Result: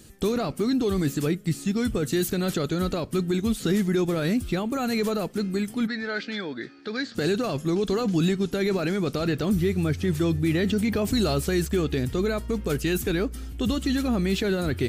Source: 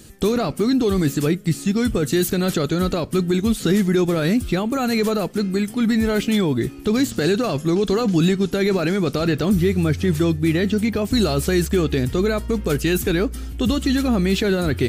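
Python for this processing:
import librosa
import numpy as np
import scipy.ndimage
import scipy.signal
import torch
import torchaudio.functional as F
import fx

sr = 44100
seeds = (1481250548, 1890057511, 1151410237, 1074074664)

y = fx.cabinet(x, sr, low_hz=370.0, low_slope=12, high_hz=4700.0, hz=(380.0, 690.0, 1000.0, 1600.0, 2900.0, 4500.0), db=(-7, -4, -7, 9, -8, 6), at=(5.86, 7.14), fade=0.02)
y = fx.env_flatten(y, sr, amount_pct=50, at=(10.21, 11.38))
y = y * librosa.db_to_amplitude(-5.5)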